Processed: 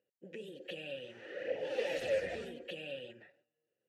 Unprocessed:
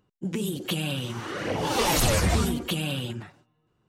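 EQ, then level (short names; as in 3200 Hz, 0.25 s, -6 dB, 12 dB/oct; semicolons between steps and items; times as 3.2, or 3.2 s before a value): vowel filter e; -1.0 dB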